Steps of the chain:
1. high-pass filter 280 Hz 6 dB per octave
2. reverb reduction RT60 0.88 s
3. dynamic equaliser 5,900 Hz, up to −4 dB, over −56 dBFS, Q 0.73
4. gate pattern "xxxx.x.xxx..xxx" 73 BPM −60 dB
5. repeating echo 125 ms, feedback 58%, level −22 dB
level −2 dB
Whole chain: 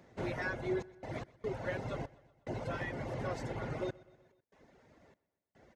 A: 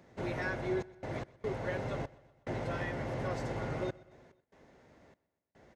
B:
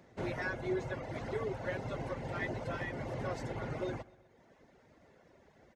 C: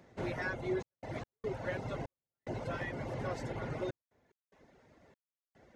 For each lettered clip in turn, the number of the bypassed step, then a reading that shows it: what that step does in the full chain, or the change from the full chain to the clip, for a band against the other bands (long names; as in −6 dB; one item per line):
2, change in integrated loudness +2.0 LU
4, change in momentary loudness spread −3 LU
5, echo-to-direct ratio −20.5 dB to none audible